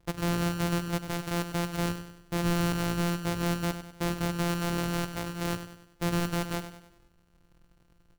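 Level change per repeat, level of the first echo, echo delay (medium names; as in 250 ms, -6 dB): -7.0 dB, -10.5 dB, 98 ms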